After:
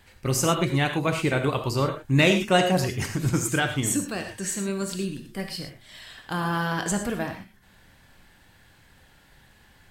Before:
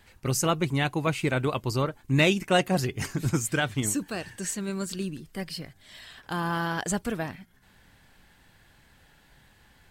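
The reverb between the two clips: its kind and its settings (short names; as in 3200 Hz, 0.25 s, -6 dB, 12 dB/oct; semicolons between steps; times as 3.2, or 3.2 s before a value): non-linear reverb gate 0.14 s flat, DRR 5 dB; gain +1.5 dB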